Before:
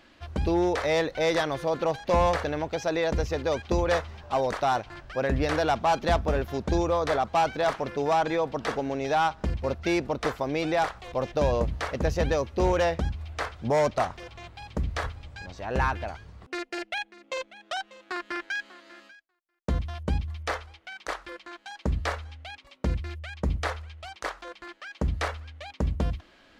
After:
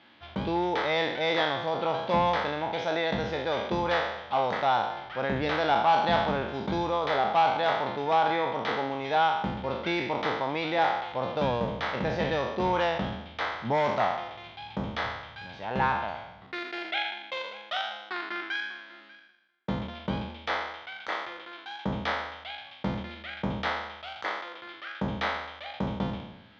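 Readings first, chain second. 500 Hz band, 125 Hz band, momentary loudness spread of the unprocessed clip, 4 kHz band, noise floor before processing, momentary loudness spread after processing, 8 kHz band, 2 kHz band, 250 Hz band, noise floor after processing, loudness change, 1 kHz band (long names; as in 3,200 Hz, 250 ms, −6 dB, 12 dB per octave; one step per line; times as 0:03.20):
−2.5 dB, −5.5 dB, 14 LU, +3.5 dB, −60 dBFS, 13 LU, below −10 dB, +1.5 dB, −1.5 dB, −50 dBFS, −0.5 dB, +2.0 dB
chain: peak hold with a decay on every bin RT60 0.92 s
loudspeaker in its box 120–4,700 Hz, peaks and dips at 120 Hz +5 dB, 200 Hz +6 dB, 870 Hz +8 dB, 1,400 Hz +4 dB, 2,100 Hz +5 dB, 3,400 Hz +9 dB
level −6 dB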